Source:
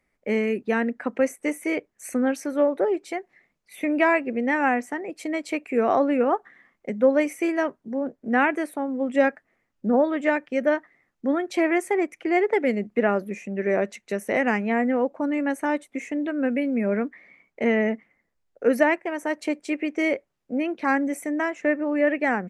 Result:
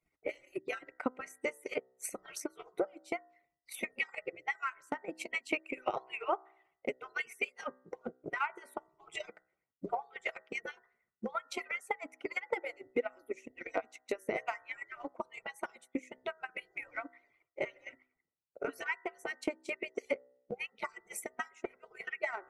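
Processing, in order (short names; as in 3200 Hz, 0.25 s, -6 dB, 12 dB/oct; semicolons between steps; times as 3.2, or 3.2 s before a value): median-filter separation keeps percussive; 5.15–7.51 bell 2700 Hz +11.5 dB 0.39 oct; de-hum 63.82 Hz, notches 31; dynamic EQ 1300 Hz, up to +3 dB, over -40 dBFS, Q 1.7; transient shaper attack +11 dB, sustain -5 dB; compressor 2:1, threshold -30 dBFS, peak gain reduction 11.5 dB; Butterworth band-stop 1700 Hz, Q 5.6; gain -6.5 dB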